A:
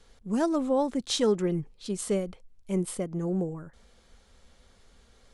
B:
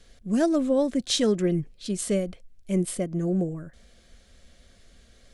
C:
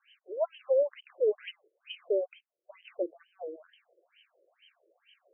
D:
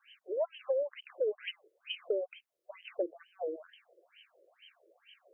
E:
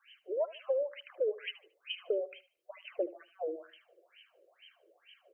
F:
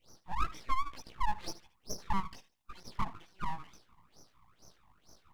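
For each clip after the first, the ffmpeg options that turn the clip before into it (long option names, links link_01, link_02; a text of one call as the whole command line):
ffmpeg -i in.wav -af "superequalizer=7b=0.631:9b=0.282:10b=0.501,volume=4dB" out.wav
ffmpeg -i in.wav -af "highshelf=frequency=2300:width_type=q:width=3:gain=7.5,afftfilt=real='re*between(b*sr/1024,430*pow(2300/430,0.5+0.5*sin(2*PI*2.2*pts/sr))/1.41,430*pow(2300/430,0.5+0.5*sin(2*PI*2.2*pts/sr))*1.41)':imag='im*between(b*sr/1024,430*pow(2300/430,0.5+0.5*sin(2*PI*2.2*pts/sr))/1.41,430*pow(2300/430,0.5+0.5*sin(2*PI*2.2*pts/sr))*1.41)':win_size=1024:overlap=0.75" out.wav
ffmpeg -i in.wav -af "acompressor=threshold=-32dB:ratio=10,volume=3.5dB" out.wav
ffmpeg -i in.wav -af "aecho=1:1:75|150|225:0.141|0.041|0.0119" out.wav
ffmpeg -i in.wav -af "flanger=delay=16:depth=3.1:speed=1.1,aeval=exprs='abs(val(0))':channel_layout=same,volume=6dB" out.wav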